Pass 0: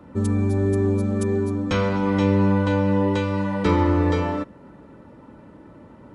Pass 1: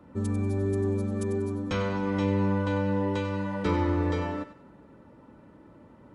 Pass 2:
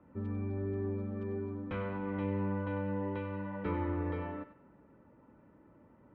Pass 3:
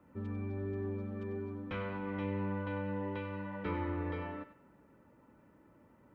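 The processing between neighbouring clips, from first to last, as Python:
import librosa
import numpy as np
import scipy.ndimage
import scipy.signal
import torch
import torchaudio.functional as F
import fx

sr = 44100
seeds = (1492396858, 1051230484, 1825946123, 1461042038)

y1 = fx.echo_thinned(x, sr, ms=95, feedback_pct=36, hz=780.0, wet_db=-10.5)
y1 = F.gain(torch.from_numpy(y1), -7.0).numpy()
y2 = scipy.signal.sosfilt(scipy.signal.butter(4, 2600.0, 'lowpass', fs=sr, output='sos'), y1)
y2 = F.gain(torch.from_numpy(y2), -8.5).numpy()
y3 = fx.high_shelf(y2, sr, hz=2200.0, db=10.0)
y3 = F.gain(torch.from_numpy(y3), -2.5).numpy()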